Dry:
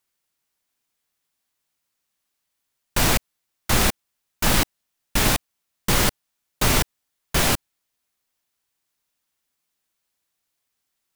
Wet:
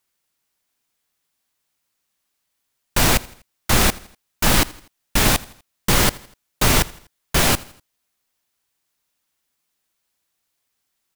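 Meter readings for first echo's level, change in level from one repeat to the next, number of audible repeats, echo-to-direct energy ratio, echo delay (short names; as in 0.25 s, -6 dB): -21.5 dB, -6.5 dB, 3, -20.5 dB, 82 ms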